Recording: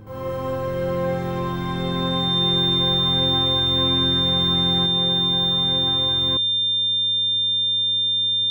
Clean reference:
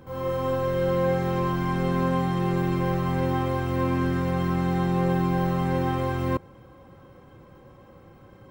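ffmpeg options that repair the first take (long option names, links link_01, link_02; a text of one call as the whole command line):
ffmpeg -i in.wav -af "bandreject=frequency=104.4:width_type=h:width=4,bandreject=frequency=208.8:width_type=h:width=4,bandreject=frequency=313.2:width_type=h:width=4,bandreject=frequency=417.6:width_type=h:width=4,bandreject=frequency=3600:width=30,asetnsamples=nb_out_samples=441:pad=0,asendcmd='4.86 volume volume 4dB',volume=0dB" out.wav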